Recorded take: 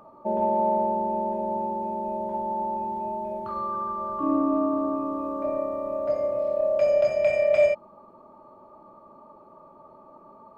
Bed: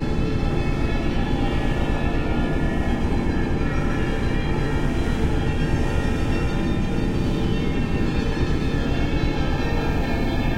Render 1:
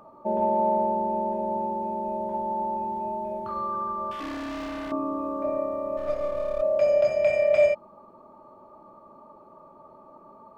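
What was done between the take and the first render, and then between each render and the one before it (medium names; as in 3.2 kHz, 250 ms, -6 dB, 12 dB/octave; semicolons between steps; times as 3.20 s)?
4.11–4.92 s: hard clipper -32.5 dBFS; 5.97–6.62 s: partial rectifier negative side -7 dB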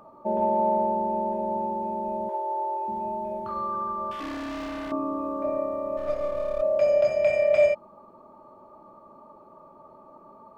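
2.29–2.88 s: brick-wall FIR high-pass 340 Hz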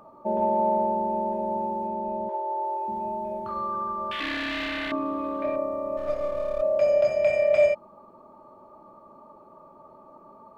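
1.87–2.64 s: distance through air 74 m; 4.11–5.56 s: high-order bell 2.6 kHz +13 dB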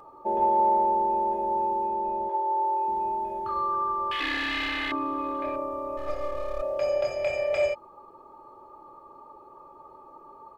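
peaking EQ 150 Hz -3 dB 2.8 oct; comb 2.4 ms, depth 69%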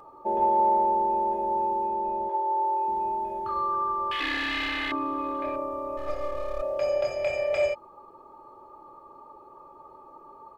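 no audible change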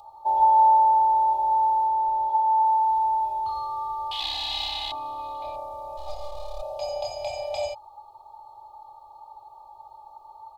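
FFT filter 110 Hz 0 dB, 200 Hz -28 dB, 510 Hz -13 dB, 800 Hz +11 dB, 1.6 kHz -26 dB, 3.9 kHz +12 dB, 5.6 kHz +5 dB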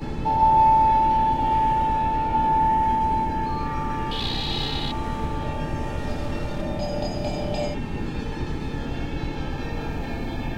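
add bed -7 dB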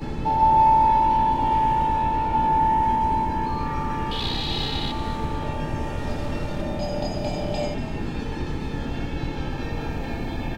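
frequency-shifting echo 236 ms, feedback 36%, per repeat +53 Hz, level -14 dB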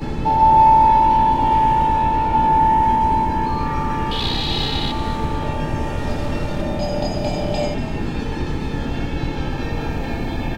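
trim +5 dB; peak limiter -3 dBFS, peak gain reduction 0.5 dB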